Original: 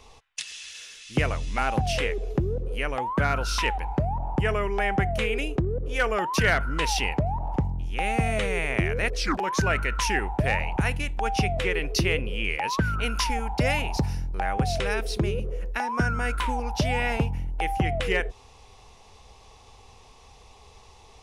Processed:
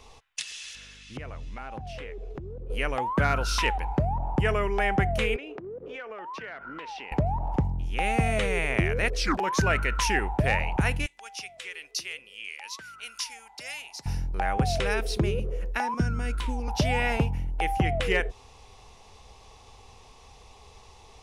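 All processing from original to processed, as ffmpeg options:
-filter_complex "[0:a]asettb=1/sr,asplit=3[s0][s1][s2];[s0]atrim=end=0.754[s3];[s1]atrim=start=0.75:end=2.7,asetpts=PTS-STARTPTS,afade=t=in:d=0.004:c=qsin,afade=t=out:st=1.946:d=0.004:c=qsin,lowpass=f=2600:p=1,aeval=exprs='val(0)+0.00224*(sin(2*PI*50*n/s)+sin(2*PI*2*50*n/s)/2+sin(2*PI*3*50*n/s)/3+sin(2*PI*4*50*n/s)/4+sin(2*PI*5*50*n/s)/5)':c=same,acompressor=threshold=0.02:ratio=10:attack=3.2:release=140:knee=1:detection=peak[s4];[s2]atrim=start=2.696[s5];[s3][s4]acrossfade=d=0.004:c1=hsin:c2=qsin[s6];[s6][s5]acrossfade=d=0.004:c1=qsin:c2=hsin,asettb=1/sr,asplit=3[s7][s8][s9];[s7]atrim=end=5.364[s10];[s8]atrim=start=5.36:end=7.12,asetpts=PTS-STARTPTS,afade=t=in:d=0.004:c=qsin,afade=t=out:st=1.756:d=0.004:c=qsin,highpass=280,lowpass=2700,acompressor=threshold=0.0178:ratio=12:attack=3.2:release=140:knee=1:detection=peak[s11];[s9]atrim=start=7.116[s12];[s10][s11]acrossfade=d=0.004:c1=hsin:c2=qsin[s13];[s13][s12]acrossfade=d=0.004:c1=qsin:c2=hsin,asettb=1/sr,asplit=3[s14][s15][s16];[s14]atrim=end=11.064[s17];[s15]atrim=start=11.06:end=14.06,asetpts=PTS-STARTPTS,afade=t=in:d=0.004:c=qsin,afade=t=out:st=2.996:d=0.004:c=qsin,lowpass=8400,aeval=exprs='val(0)+0.00178*sin(2*PI*2000*n/s)':c=same,aderivative[s18];[s16]atrim=start=14.056[s19];[s17][s18]acrossfade=d=0.004:c1=hsin:c2=qsin[s20];[s20][s19]acrossfade=d=0.004:c1=qsin:c2=hsin,asettb=1/sr,asplit=3[s21][s22][s23];[s21]atrim=end=15.944[s24];[s22]atrim=start=15.94:end=16.68,asetpts=PTS-STARTPTS,afade=t=in:d=0.004:c=qsin,afade=t=out:st=0.736:d=0.004:c=qsin,acrossover=split=420|3000[s25][s26][s27];[s26]acompressor=threshold=0.00112:ratio=1.5:attack=3.2:release=140:knee=2.83:detection=peak[s28];[s25][s28][s27]amix=inputs=3:normalize=0,highshelf=f=10000:g=-10.5[s29];[s23]atrim=start=16.676[s30];[s24][s29]acrossfade=d=0.004:c1=hsin:c2=qsin[s31];[s31][s30]acrossfade=d=0.004:c1=qsin:c2=hsin"

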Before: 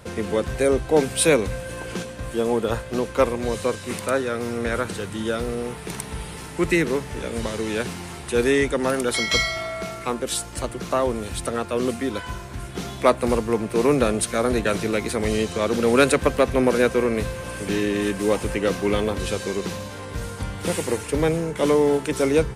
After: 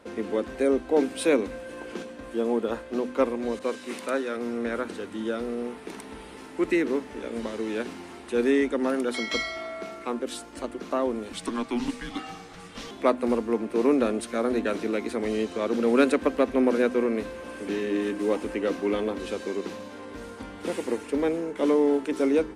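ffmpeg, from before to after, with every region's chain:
-filter_complex "[0:a]asettb=1/sr,asplit=3[s0][s1][s2];[s0]atrim=end=3.594[s3];[s1]atrim=start=3.59:end=4.37,asetpts=PTS-STARTPTS,afade=t=in:d=0.004:c=qsin,afade=t=out:st=0.776:d=0.004:c=qsin,highpass=f=230:p=1,adynamicequalizer=threshold=0.0112:dfrequency=1800:dqfactor=0.7:tfrequency=1800:tqfactor=0.7:attack=5:release=100:ratio=0.375:range=2:mode=boostabove:tftype=highshelf[s4];[s2]atrim=start=4.366[s5];[s3][s4]acrossfade=d=0.004:c1=hsin:c2=qsin[s6];[s6][s5]acrossfade=d=0.004:c1=qsin:c2=hsin,asettb=1/sr,asplit=3[s7][s8][s9];[s7]atrim=end=11.334[s10];[s8]atrim=start=11.33:end=12.91,asetpts=PTS-STARTPTS,afade=t=in:d=0.004:c=qsin,afade=t=out:st=1.576:d=0.004:c=qsin,equalizer=f=5000:t=o:w=2.3:g=7.5,afreqshift=-230[s11];[s9]atrim=start=12.906[s12];[s10][s11]acrossfade=d=0.004:c1=hsin:c2=qsin[s13];[s13][s12]acrossfade=d=0.004:c1=qsin:c2=hsin,lowpass=f=3300:p=1,lowshelf=f=190:t=q:w=3:g=-9.5,bandreject=f=62.21:t=h:w=4,bandreject=f=124.42:t=h:w=4,bandreject=f=186.63:t=h:w=4,bandreject=f=248.84:t=h:w=4,bandreject=f=311.05:t=h:w=4,volume=0.501"

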